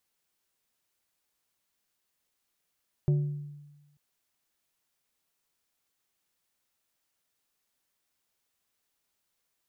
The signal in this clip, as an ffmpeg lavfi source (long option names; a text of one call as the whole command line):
ffmpeg -f lavfi -i "aevalsrc='0.106*pow(10,-3*t/1.18)*sin(2*PI*146*t)+0.0282*pow(10,-3*t/0.621)*sin(2*PI*365*t)+0.0075*pow(10,-3*t/0.447)*sin(2*PI*584*t)+0.002*pow(10,-3*t/0.382)*sin(2*PI*730*t)+0.000531*pow(10,-3*t/0.318)*sin(2*PI*949*t)':duration=0.89:sample_rate=44100" out.wav